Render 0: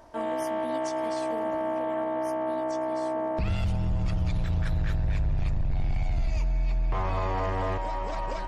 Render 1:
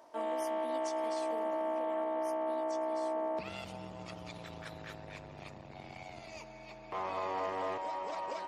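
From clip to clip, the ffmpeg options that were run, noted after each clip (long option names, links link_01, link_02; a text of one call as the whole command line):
ffmpeg -i in.wav -af "highpass=330,equalizer=frequency=1600:width=3.8:gain=-4.5,volume=-4.5dB" out.wav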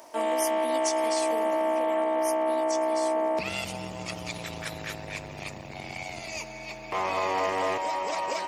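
ffmpeg -i in.wav -af "aexciter=amount=1.6:drive=6.8:freq=2000,volume=8.5dB" out.wav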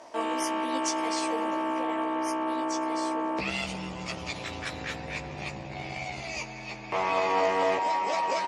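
ffmpeg -i in.wav -filter_complex "[0:a]adynamicsmooth=sensitivity=2:basefreq=7700,lowpass=10000,asplit=2[link_01][link_02];[link_02]adelay=15,volume=-2.5dB[link_03];[link_01][link_03]amix=inputs=2:normalize=0" out.wav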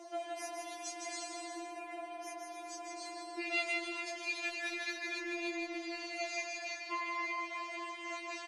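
ffmpeg -i in.wav -filter_complex "[0:a]acompressor=threshold=-34dB:ratio=4,asplit=2[link_01][link_02];[link_02]aecho=0:1:160|280|370|437.5|488.1:0.631|0.398|0.251|0.158|0.1[link_03];[link_01][link_03]amix=inputs=2:normalize=0,afftfilt=real='re*4*eq(mod(b,16),0)':imag='im*4*eq(mod(b,16),0)':win_size=2048:overlap=0.75" out.wav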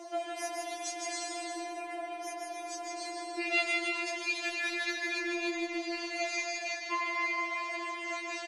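ffmpeg -i in.wav -af "aecho=1:1:149:0.355,volume=5dB" out.wav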